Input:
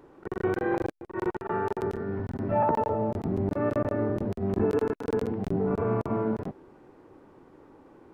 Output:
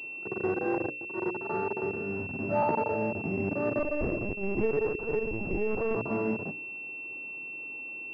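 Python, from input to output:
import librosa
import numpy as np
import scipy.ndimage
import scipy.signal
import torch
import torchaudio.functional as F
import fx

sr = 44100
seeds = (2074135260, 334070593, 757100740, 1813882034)

y = fx.block_float(x, sr, bits=5)
y = scipy.signal.sosfilt(scipy.signal.butter(2, 120.0, 'highpass', fs=sr, output='sos'), y)
y = fx.hum_notches(y, sr, base_hz=60, count=9)
y = fx.lpc_vocoder(y, sr, seeds[0], excitation='pitch_kept', order=16, at=(3.79, 5.96))
y = fx.pwm(y, sr, carrier_hz=2700.0)
y = y * librosa.db_to_amplitude(-1.5)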